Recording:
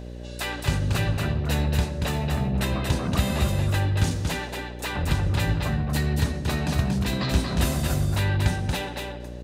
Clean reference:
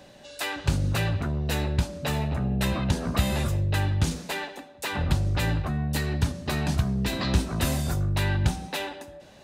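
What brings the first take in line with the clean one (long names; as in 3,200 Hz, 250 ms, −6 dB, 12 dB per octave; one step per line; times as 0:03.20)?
hum removal 60.4 Hz, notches 10
echo removal 232 ms −4 dB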